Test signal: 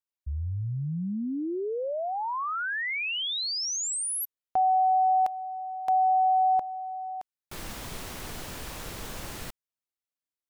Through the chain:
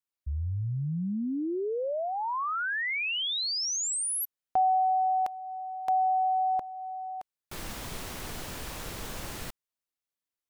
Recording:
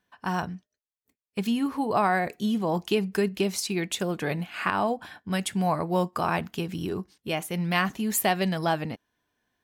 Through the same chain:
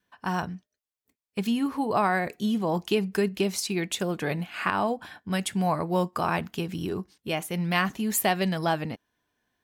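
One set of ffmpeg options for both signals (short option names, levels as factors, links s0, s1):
-af "adynamicequalizer=threshold=0.0158:dfrequency=720:dqfactor=4.2:tfrequency=720:tqfactor=4.2:attack=5:release=100:ratio=0.375:range=3:mode=cutabove:tftype=bell"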